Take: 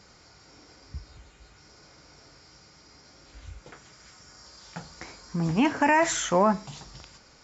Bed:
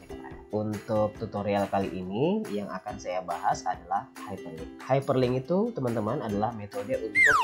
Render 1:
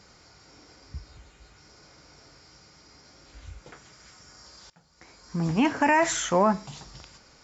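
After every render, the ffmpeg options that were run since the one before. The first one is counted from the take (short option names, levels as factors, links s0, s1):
-filter_complex "[0:a]asplit=2[s0][s1];[s0]atrim=end=4.7,asetpts=PTS-STARTPTS,afade=t=out:st=4.696:d=0.004:c=hsin:silence=0.0841395[s2];[s1]atrim=start=4.7,asetpts=PTS-STARTPTS,afade=t=in:d=0.67:c=qua:silence=0.0841395[s3];[s2][s3]concat=n=2:v=0:a=1"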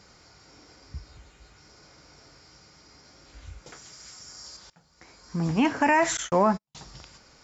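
-filter_complex "[0:a]asettb=1/sr,asplit=3[s0][s1][s2];[s0]atrim=end=3.664[s3];[s1]atrim=start=3.66:end=4.57,asetpts=PTS-STARTPTS,afade=t=in:d=0.004:c=qsin,afade=t=out:st=0.906:d=0.004:c=qsin,bass=f=250:g=-1,treble=f=4000:g=10[s4];[s2]atrim=start=4.566[s5];[s3][s4]acrossfade=d=0.004:c1=hsin:c2=qsin[s6];[s6][s5]acrossfade=d=0.004:c1=qsin:c2=hsin,asettb=1/sr,asplit=3[s7][s8][s9];[s7]atrim=end=6.174[s10];[s8]atrim=start=6.17:end=6.75,asetpts=PTS-STARTPTS,afade=t=in:d=0.004:c=qsin,afade=t=out:st=0.576:d=0.004:c=qsin,agate=range=0.00316:threshold=0.0282:ratio=16:release=100:detection=peak[s11];[s9]atrim=start=6.746[s12];[s10][s11]acrossfade=d=0.004:c1=hsin:c2=qsin[s13];[s13][s12]acrossfade=d=0.004:c1=qsin:c2=hsin"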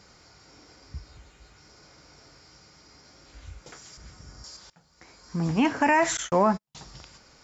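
-filter_complex "[0:a]asettb=1/sr,asplit=3[s0][s1][s2];[s0]atrim=end=3.974[s3];[s1]atrim=start=3.97:end=4.44,asetpts=PTS-STARTPTS,afade=t=in:d=0.004:c=qsin,afade=t=out:st=0.466:d=0.004:c=qsin,aemphasis=mode=reproduction:type=riaa[s4];[s2]atrim=start=4.436[s5];[s3][s4]acrossfade=d=0.004:c1=hsin:c2=qsin[s6];[s6][s5]acrossfade=d=0.004:c1=qsin:c2=hsin"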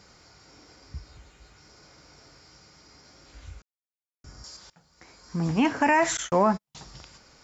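-filter_complex "[0:a]asplit=3[s0][s1][s2];[s0]atrim=end=3.62,asetpts=PTS-STARTPTS,afade=t=out:st=3.616:d=0.004:c=hsin[s3];[s1]atrim=start=3.62:end=4.24,asetpts=PTS-STARTPTS,volume=0[s4];[s2]atrim=start=4.24,asetpts=PTS-STARTPTS,afade=t=in:d=0.004:c=hsin[s5];[s3][s4][s5]concat=n=3:v=0:a=1"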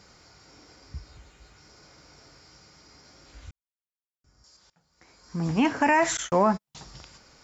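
-filter_complex "[0:a]asplit=2[s0][s1];[s0]atrim=end=3.51,asetpts=PTS-STARTPTS,afade=t=out:st=3.506:d=0.004:c=hsin[s2];[s1]atrim=start=3.51,asetpts=PTS-STARTPTS,afade=t=in:d=2.06:c=qua[s3];[s2][s3]concat=n=2:v=0:a=1"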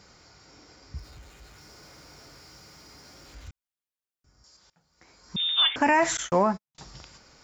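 -filter_complex "[0:a]asettb=1/sr,asplit=3[s0][s1][s2];[s0]atrim=end=0.964[s3];[s1]atrim=start=0.96:end=3.48,asetpts=PTS-STARTPTS,afade=t=in:d=0.004:c=qsin,afade=t=out:st=2.516:d=0.004:c=qsin,aeval=exprs='val(0)+0.5*0.00224*sgn(val(0))':c=same[s4];[s2]atrim=start=3.476[s5];[s3][s4]acrossfade=d=0.004:c1=hsin:c2=qsin[s6];[s6][s5]acrossfade=d=0.004:c1=qsin:c2=hsin,asettb=1/sr,asplit=3[s7][s8][s9];[s7]atrim=end=5.364[s10];[s8]atrim=start=5.36:end=5.76,asetpts=PTS-STARTPTS,afade=t=in:d=0.004:c=qsin,afade=t=out:st=0.396:d=0.004:c=qsin,lowpass=f=3200:t=q:w=0.5098,lowpass=f=3200:t=q:w=0.6013,lowpass=f=3200:t=q:w=0.9,lowpass=f=3200:t=q:w=2.563,afreqshift=-3800[s11];[s9]atrim=start=5.756[s12];[s10][s11]acrossfade=d=0.004:c1=hsin:c2=qsin[s13];[s13][s12]acrossfade=d=0.004:c1=qsin:c2=hsin,asplit=2[s14][s15];[s14]atrim=end=6.78,asetpts=PTS-STARTPTS,afade=t=out:st=6.38:d=0.4[s16];[s15]atrim=start=6.78,asetpts=PTS-STARTPTS,afade=t=in:d=0.004:c=hsin[s17];[s16][s17]concat=n=2:v=0:a=1"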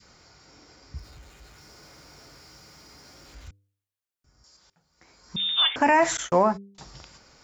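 -af "bandreject=f=99.2:t=h:w=4,bandreject=f=198.4:t=h:w=4,bandreject=f=297.6:t=h:w=4,bandreject=f=396.8:t=h:w=4,bandreject=f=496:t=h:w=4,adynamicequalizer=threshold=0.02:dfrequency=670:dqfactor=0.8:tfrequency=670:tqfactor=0.8:attack=5:release=100:ratio=0.375:range=1.5:mode=boostabove:tftype=bell"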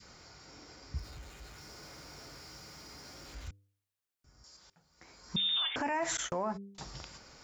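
-af "acompressor=threshold=0.0562:ratio=6,alimiter=level_in=1.06:limit=0.0631:level=0:latency=1:release=87,volume=0.944"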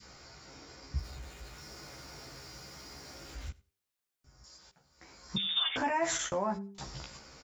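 -filter_complex "[0:a]asplit=2[s0][s1];[s1]adelay=15,volume=0.708[s2];[s0][s2]amix=inputs=2:normalize=0,aecho=1:1:93|186:0.075|0.0127"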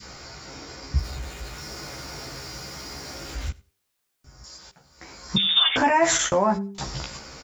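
-af "volume=3.76"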